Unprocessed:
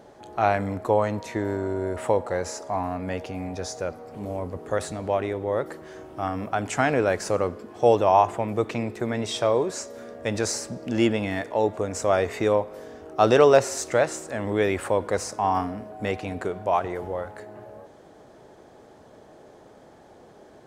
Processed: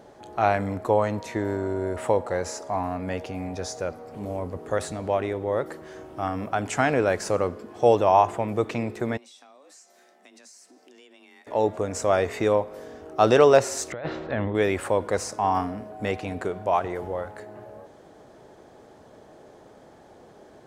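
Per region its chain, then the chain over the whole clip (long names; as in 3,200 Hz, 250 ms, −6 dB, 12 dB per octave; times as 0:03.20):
0:09.17–0:11.47: guitar amp tone stack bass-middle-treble 5-5-5 + downward compressor 5 to 1, threshold −49 dBFS + frequency shifter +130 Hz
0:13.92–0:14.55: elliptic low-pass filter 3,800 Hz, stop band 80 dB + low-shelf EQ 150 Hz +8.5 dB + compressor whose output falls as the input rises −29 dBFS
whole clip: no processing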